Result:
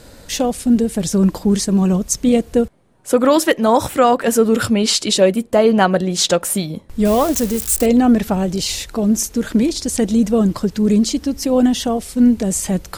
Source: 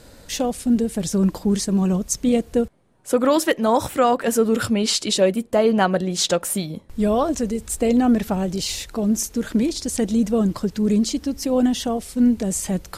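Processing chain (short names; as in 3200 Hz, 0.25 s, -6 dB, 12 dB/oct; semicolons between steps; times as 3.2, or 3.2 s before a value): 7.05–7.86 switching spikes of -19.5 dBFS; gain +4.5 dB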